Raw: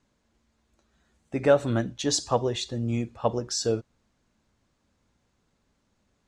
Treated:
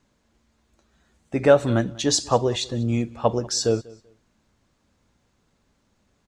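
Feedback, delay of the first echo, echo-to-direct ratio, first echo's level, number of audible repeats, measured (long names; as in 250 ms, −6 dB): repeats not evenly spaced, 192 ms, −23.0 dB, −23.0 dB, 1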